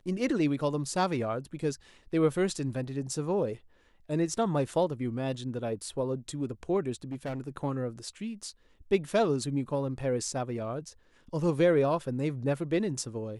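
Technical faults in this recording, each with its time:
0:07.04–0:07.41: clipping −31 dBFS

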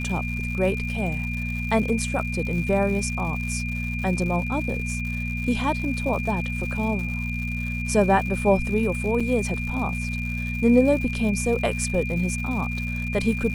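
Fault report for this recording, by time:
surface crackle 180 per second −32 dBFS
mains hum 60 Hz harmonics 4 −29 dBFS
whistle 2,400 Hz −31 dBFS
0:09.20–0:09.21: drop-out 5.1 ms

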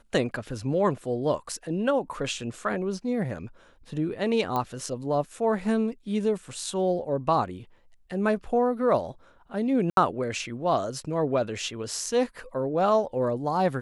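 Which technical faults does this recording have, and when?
0:04.56: click −16 dBFS
0:09.90–0:09.97: drop-out 72 ms

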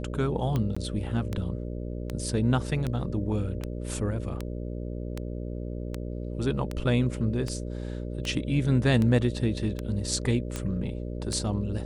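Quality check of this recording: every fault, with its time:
mains buzz 60 Hz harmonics 10 −34 dBFS
scratch tick 78 rpm −17 dBFS
0:00.75–0:00.77: drop-out 15 ms

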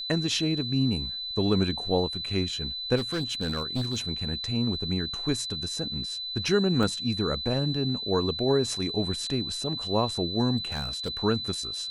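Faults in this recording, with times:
whistle 4,000 Hz −32 dBFS
0:02.96–0:03.99: clipping −24 dBFS
0:06.83: drop-out 2.7 ms
0:10.57–0:11.17: clipping −26.5 dBFS

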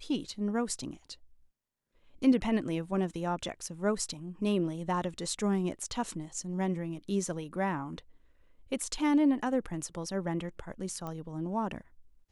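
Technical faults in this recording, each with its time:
0:11.07: click −26 dBFS

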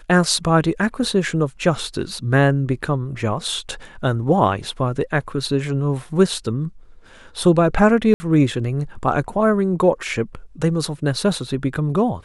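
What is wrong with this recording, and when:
0:08.14–0:08.20: drop-out 60 ms

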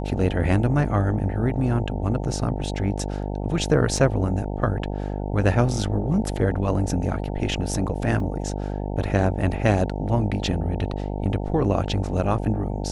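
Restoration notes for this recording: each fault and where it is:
mains buzz 50 Hz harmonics 18 −28 dBFS
0:03.97: drop-out 3.2 ms
0:08.20: drop-out 2.8 ms

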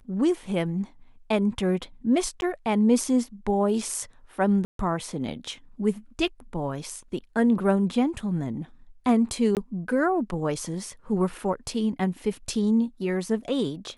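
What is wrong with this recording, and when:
0:02.41–0:02.42: drop-out
0:04.65–0:04.79: drop-out 142 ms
0:09.55–0:09.57: drop-out 18 ms

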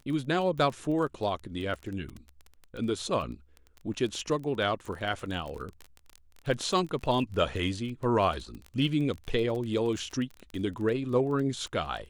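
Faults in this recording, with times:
surface crackle 21 per second −34 dBFS
0:03.94: drop-out 4.6 ms

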